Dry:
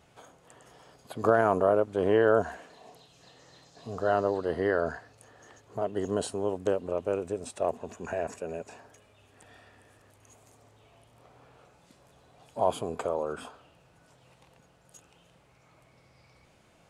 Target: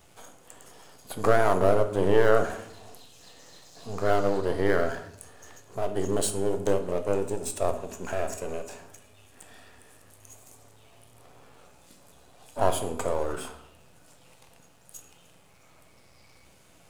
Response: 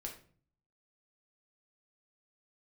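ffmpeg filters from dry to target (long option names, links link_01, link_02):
-filter_complex "[0:a]aeval=exprs='if(lt(val(0),0),0.447*val(0),val(0))':channel_layout=same,aemphasis=mode=production:type=50kf,asplit=2[link_01][link_02];[1:a]atrim=start_sample=2205,asetrate=26901,aresample=44100[link_03];[link_02][link_03]afir=irnorm=-1:irlink=0,volume=-0.5dB[link_04];[link_01][link_04]amix=inputs=2:normalize=0,volume=-1dB"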